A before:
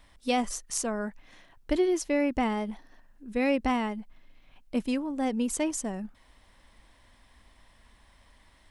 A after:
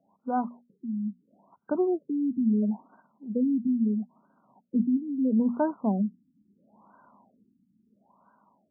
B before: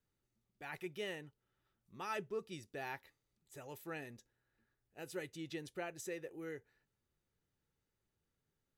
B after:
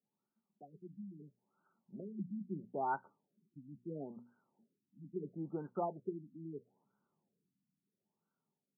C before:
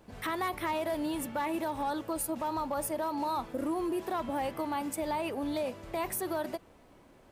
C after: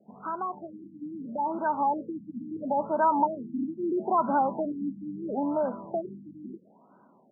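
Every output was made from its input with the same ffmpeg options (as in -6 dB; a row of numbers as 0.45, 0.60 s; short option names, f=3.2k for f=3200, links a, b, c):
-af "aexciter=amount=11.4:drive=4.1:freq=2k,highpass=f=170:w=0.5412,highpass=f=170:w=1.3066,equalizer=f=200:t=q:w=4:g=7,equalizer=f=320:t=q:w=4:g=-6,equalizer=f=500:t=q:w=4:g=-6,equalizer=f=950:t=q:w=4:g=5,equalizer=f=1.4k:t=q:w=4:g=3,equalizer=f=2.1k:t=q:w=4:g=5,lowpass=f=2.9k:w=0.5412,lowpass=f=2.9k:w=1.3066,bandreject=f=60:t=h:w=6,bandreject=f=120:t=h:w=6,bandreject=f=180:t=h:w=6,bandreject=f=240:t=h:w=6,dynaudnorm=f=280:g=11:m=9dB,afftfilt=real='re*lt(b*sr/1024,300*pow(1600/300,0.5+0.5*sin(2*PI*0.75*pts/sr)))':imag='im*lt(b*sr/1024,300*pow(1600/300,0.5+0.5*sin(2*PI*0.75*pts/sr)))':win_size=1024:overlap=0.75"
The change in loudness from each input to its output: +1.5, +2.0, +4.5 LU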